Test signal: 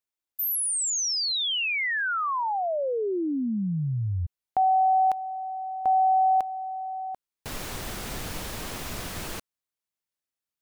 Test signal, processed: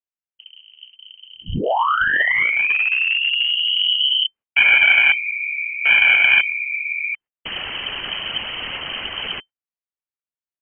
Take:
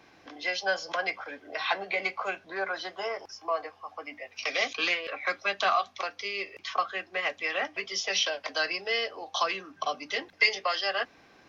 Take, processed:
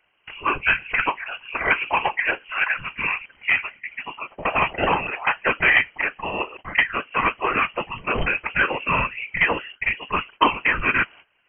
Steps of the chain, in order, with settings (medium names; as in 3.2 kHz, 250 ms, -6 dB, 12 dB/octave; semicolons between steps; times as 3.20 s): whisper effect; dynamic bell 1.3 kHz, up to +3 dB, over -33 dBFS, Q 0.82; gate -49 dBFS, range -17 dB; one-sided clip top -23 dBFS; frequency inversion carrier 3.1 kHz; trim +8 dB